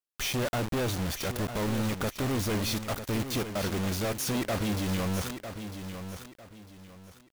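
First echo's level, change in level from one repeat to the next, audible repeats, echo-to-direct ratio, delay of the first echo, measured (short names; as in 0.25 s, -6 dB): -9.5 dB, -10.5 dB, 3, -9.0 dB, 0.951 s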